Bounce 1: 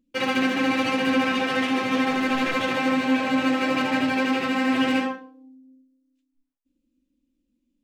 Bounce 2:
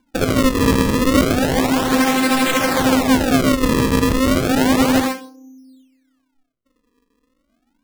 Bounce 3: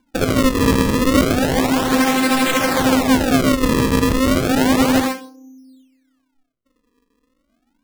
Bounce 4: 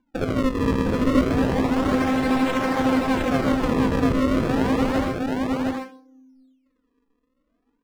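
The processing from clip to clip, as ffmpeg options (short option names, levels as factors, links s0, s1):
-af "acrusher=samples=34:mix=1:aa=0.000001:lfo=1:lforange=54.4:lforate=0.32,volume=2.24"
-af anull
-af "lowpass=f=1700:p=1,aecho=1:1:710:0.708,volume=0.501"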